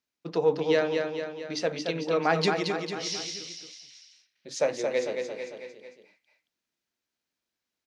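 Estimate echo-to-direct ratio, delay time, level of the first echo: -3.5 dB, 224 ms, -5.0 dB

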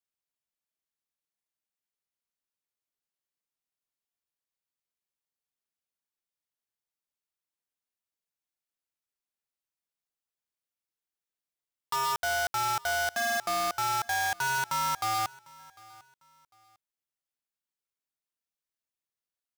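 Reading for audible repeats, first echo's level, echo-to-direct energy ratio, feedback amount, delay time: 2, -23.0 dB, -22.5 dB, 29%, 750 ms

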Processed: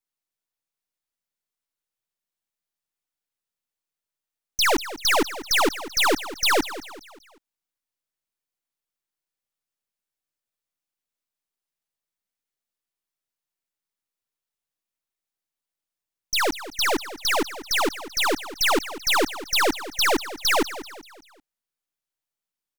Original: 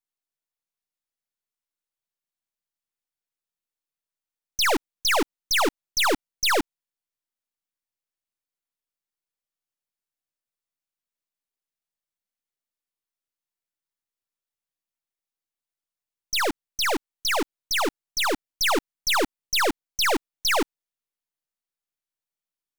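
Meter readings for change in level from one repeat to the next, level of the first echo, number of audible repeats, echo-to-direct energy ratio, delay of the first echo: -7.0 dB, -14.5 dB, 3, -13.5 dB, 193 ms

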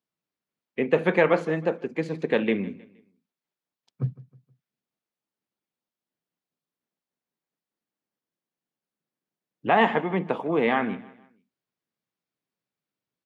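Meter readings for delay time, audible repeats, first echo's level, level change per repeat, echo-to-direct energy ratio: 157 ms, 2, -19.5 dB, -8.5 dB, -19.0 dB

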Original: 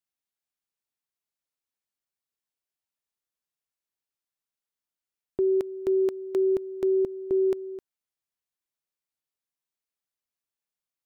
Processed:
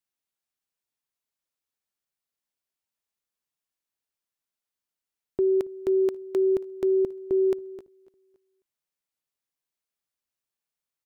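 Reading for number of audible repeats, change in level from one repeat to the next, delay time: 2, -8.0 dB, 277 ms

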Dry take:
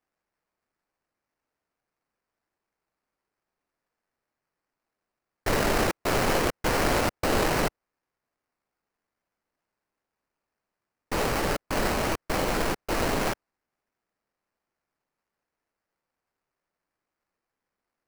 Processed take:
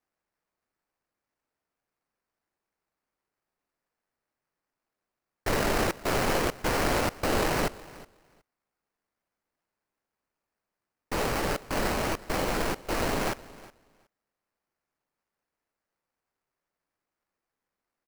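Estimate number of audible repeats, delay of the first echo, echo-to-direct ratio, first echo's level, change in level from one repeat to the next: 1, 367 ms, -20.0 dB, -20.0 dB, no regular repeats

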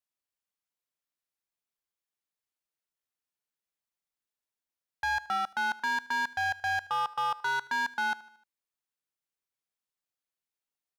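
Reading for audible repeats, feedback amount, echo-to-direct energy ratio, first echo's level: 3, 52%, -18.5 dB, -20.0 dB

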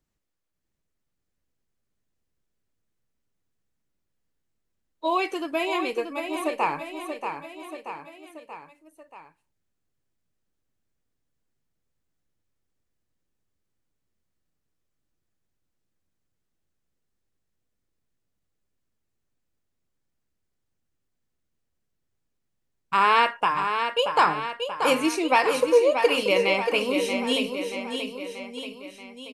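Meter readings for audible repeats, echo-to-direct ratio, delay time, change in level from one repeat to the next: 4, -5.5 dB, 632 ms, -5.0 dB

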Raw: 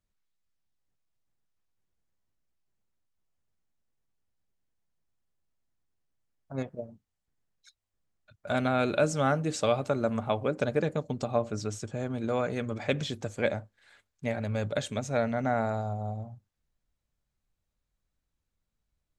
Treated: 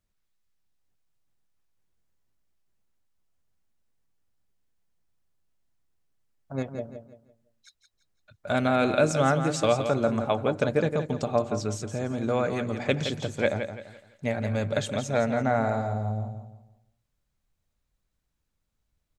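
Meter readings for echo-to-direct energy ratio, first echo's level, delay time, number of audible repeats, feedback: -8.0 dB, -8.5 dB, 169 ms, 3, 33%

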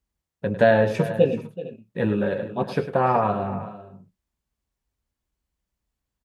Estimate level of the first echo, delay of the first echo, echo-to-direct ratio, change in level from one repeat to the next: -11.5 dB, 102 ms, -9.5 dB, no regular repeats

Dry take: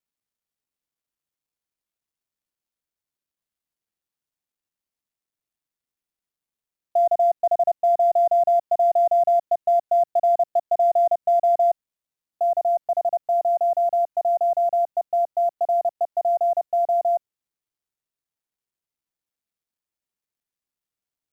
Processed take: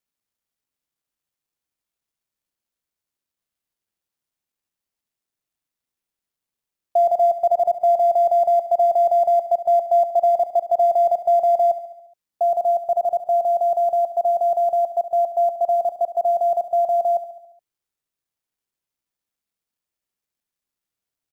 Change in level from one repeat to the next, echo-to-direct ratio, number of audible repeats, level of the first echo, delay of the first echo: -4.5 dB, -11.0 dB, 5, -13.0 dB, 70 ms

